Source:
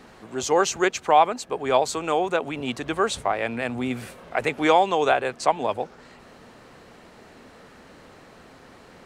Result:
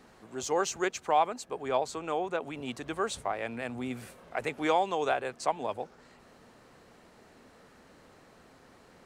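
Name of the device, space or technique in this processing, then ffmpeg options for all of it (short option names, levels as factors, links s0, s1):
exciter from parts: -filter_complex "[0:a]asettb=1/sr,asplit=3[s0][s1][s2];[s0]atrim=end=1.684[s3];[s1]atrim=start=1.68:end=2.41,asetpts=PTS-STARTPTS,afade=t=in:d=0.004:c=qsin,afade=t=out:st=0.726:d=0.004:c=qsin,highshelf=f=6000:g=-9[s4];[s2]atrim=start=2.406[s5];[s3][s4]acrossfade=d=0.004:c1=hsin:c2=qsin[s6];[s6][s5]acrossfade=d=0.004:c1=qsin:c2=hsin,asplit=2[s7][s8];[s8]highpass=f=4100:p=1,asoftclip=type=tanh:threshold=0.0668,highpass=2800,volume=0.447[s9];[s7][s9]amix=inputs=2:normalize=0,volume=0.376"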